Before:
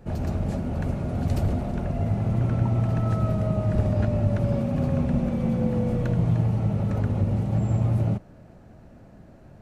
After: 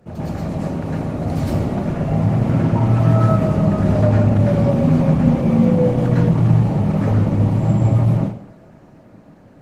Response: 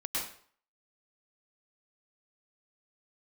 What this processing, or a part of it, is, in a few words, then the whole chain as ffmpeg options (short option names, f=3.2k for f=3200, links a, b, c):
far-field microphone of a smart speaker: -filter_complex "[1:a]atrim=start_sample=2205[a];[0:a][a]afir=irnorm=-1:irlink=0,highpass=100,dynaudnorm=f=260:g=13:m=4.5dB,volume=2.5dB" -ar 48000 -c:a libopus -b:a 16k